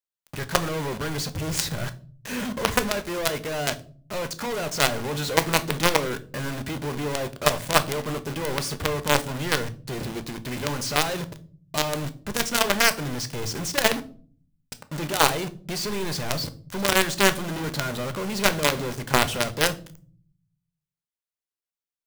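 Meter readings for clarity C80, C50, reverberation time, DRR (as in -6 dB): 23.0 dB, 18.5 dB, 0.45 s, 10.5 dB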